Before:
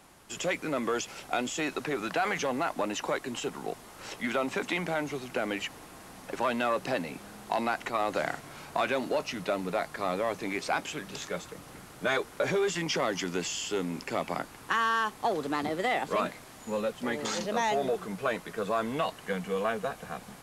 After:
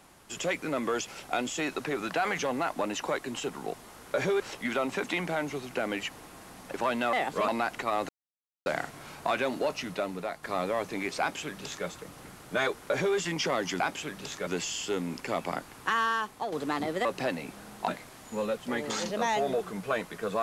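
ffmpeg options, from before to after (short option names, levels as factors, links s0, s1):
-filter_complex "[0:a]asplit=12[s0][s1][s2][s3][s4][s5][s6][s7][s8][s9][s10][s11];[s0]atrim=end=3.992[s12];[s1]atrim=start=12.248:end=12.662[s13];[s2]atrim=start=3.988:end=6.722[s14];[s3]atrim=start=15.878:end=16.232[s15];[s4]atrim=start=7.548:end=8.16,asetpts=PTS-STARTPTS,afade=t=out:st=0.608:d=0.004:c=hsin,apad=pad_dur=0.57[s16];[s5]atrim=start=8.16:end=9.93,asetpts=PTS-STARTPTS,afade=t=in:d=0.004:c=hsin,afade=t=out:st=1.15:d=0.62:silence=0.446684[s17];[s6]atrim=start=9.93:end=13.302,asetpts=PTS-STARTPTS,afade=t=in:d=0.004:c=hsin:silence=0.446684[s18];[s7]atrim=start=10.698:end=11.372[s19];[s8]atrim=start=13.298:end=15.35,asetpts=PTS-STARTPTS,afade=t=out:st=1.552:d=0.5:silence=0.446684[s20];[s9]atrim=start=15.35:end=15.882,asetpts=PTS-STARTPTS,afade=t=in:d=0.004:c=hsin:silence=0.446684[s21];[s10]atrim=start=6.718:end=7.552[s22];[s11]atrim=start=16.228[s23];[s12][s13]acrossfade=d=0.004:c1=hsin:c2=hsin[s24];[s24][s14]acrossfade=d=0.004:c1=hsin:c2=hsin[s25];[s25][s15]acrossfade=d=0.004:c1=hsin:c2=hsin[s26];[s16][s17][s18]concat=n=3:v=0:a=1[s27];[s26][s27]acrossfade=d=0.004:c1=hsin:c2=hsin[s28];[s28][s19]acrossfade=d=0.004:c1=hsin:c2=hsin[s29];[s20][s21]concat=n=2:v=0:a=1[s30];[s29][s30]acrossfade=d=0.004:c1=hsin:c2=hsin[s31];[s31][s22]acrossfade=d=0.004:c1=hsin:c2=hsin[s32];[s32][s23]acrossfade=d=0.004:c1=hsin:c2=hsin"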